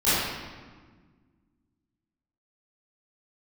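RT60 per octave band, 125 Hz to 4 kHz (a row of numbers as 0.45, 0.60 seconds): 2.3, 2.4, 1.6, 1.5, 1.3, 1.0 seconds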